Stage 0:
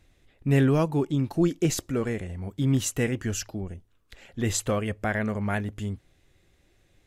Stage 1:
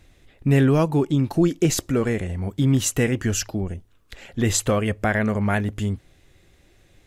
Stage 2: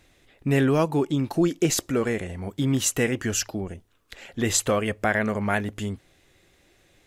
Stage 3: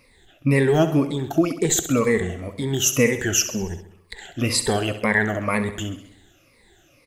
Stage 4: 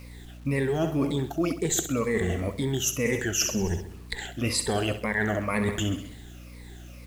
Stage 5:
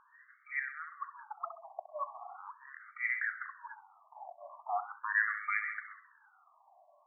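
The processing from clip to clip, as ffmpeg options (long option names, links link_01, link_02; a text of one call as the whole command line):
ffmpeg -i in.wav -af "acompressor=threshold=-27dB:ratio=1.5,volume=7.5dB" out.wav
ffmpeg -i in.wav -af "lowshelf=frequency=170:gain=-10.5" out.wav
ffmpeg -i in.wav -af "afftfilt=real='re*pow(10,18/40*sin(2*PI*(0.93*log(max(b,1)*sr/1024/100)/log(2)-(-2)*(pts-256)/sr)))':imag='im*pow(10,18/40*sin(2*PI*(0.93*log(max(b,1)*sr/1024/100)/log(2)-(-2)*(pts-256)/sr)))':win_size=1024:overlap=0.75,aecho=1:1:66|132|198|264|330|396:0.251|0.143|0.0816|0.0465|0.0265|0.0151" out.wav
ffmpeg -i in.wav -af "areverse,acompressor=threshold=-27dB:ratio=10,areverse,aeval=exprs='val(0)+0.00447*(sin(2*PI*60*n/s)+sin(2*PI*2*60*n/s)/2+sin(2*PI*3*60*n/s)/3+sin(2*PI*4*60*n/s)/4+sin(2*PI*5*60*n/s)/5)':channel_layout=same,acrusher=bits=9:mix=0:aa=0.000001,volume=4dB" out.wav
ffmpeg -i in.wav -af "afftfilt=real='re*between(b*sr/1024,810*pow(1700/810,0.5+0.5*sin(2*PI*0.4*pts/sr))/1.41,810*pow(1700/810,0.5+0.5*sin(2*PI*0.4*pts/sr))*1.41)':imag='im*between(b*sr/1024,810*pow(1700/810,0.5+0.5*sin(2*PI*0.4*pts/sr))/1.41,810*pow(1700/810,0.5+0.5*sin(2*PI*0.4*pts/sr))*1.41)':win_size=1024:overlap=0.75" out.wav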